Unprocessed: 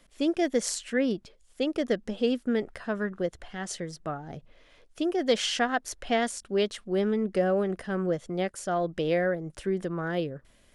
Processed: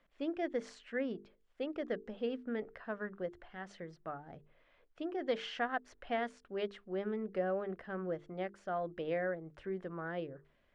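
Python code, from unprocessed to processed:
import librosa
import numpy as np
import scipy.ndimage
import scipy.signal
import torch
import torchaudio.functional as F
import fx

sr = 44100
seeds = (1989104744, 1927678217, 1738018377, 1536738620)

y = scipy.signal.sosfilt(scipy.signal.butter(2, 2100.0, 'lowpass', fs=sr, output='sos'), x)
y = fx.low_shelf(y, sr, hz=440.0, db=-6.5)
y = fx.hum_notches(y, sr, base_hz=50, count=9)
y = F.gain(torch.from_numpy(y), -6.5).numpy()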